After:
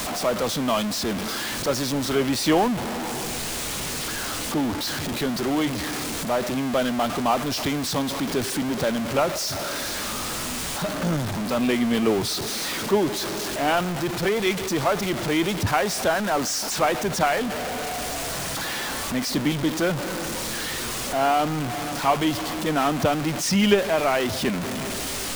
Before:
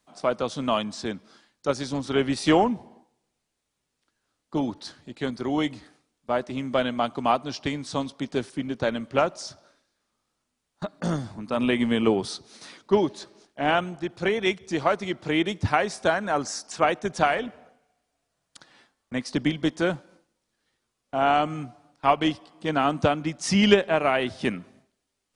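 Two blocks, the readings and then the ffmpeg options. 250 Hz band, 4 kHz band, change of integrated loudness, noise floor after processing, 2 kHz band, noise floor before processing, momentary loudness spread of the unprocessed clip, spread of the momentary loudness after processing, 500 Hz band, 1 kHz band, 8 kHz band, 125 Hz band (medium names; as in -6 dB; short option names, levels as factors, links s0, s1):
+2.5 dB, +6.0 dB, +1.5 dB, -29 dBFS, +2.5 dB, -80 dBFS, 13 LU, 6 LU, +1.5 dB, +1.5 dB, +12.5 dB, +3.5 dB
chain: -af "aeval=exprs='val(0)+0.5*0.0944*sgn(val(0))':c=same,volume=0.75"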